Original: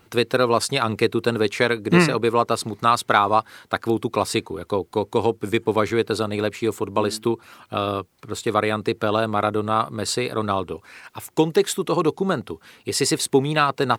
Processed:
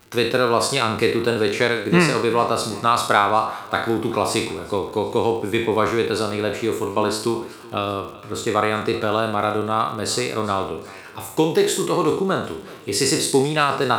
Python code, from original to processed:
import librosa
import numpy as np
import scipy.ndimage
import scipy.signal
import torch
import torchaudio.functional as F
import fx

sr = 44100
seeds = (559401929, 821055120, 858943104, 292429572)

p1 = fx.spec_trails(x, sr, decay_s=0.58)
p2 = fx.dmg_crackle(p1, sr, seeds[0], per_s=90.0, level_db=-32.0)
p3 = p2 + fx.echo_feedback(p2, sr, ms=379, feedback_pct=48, wet_db=-20.5, dry=0)
y = p3 * 10.0 ** (-1.0 / 20.0)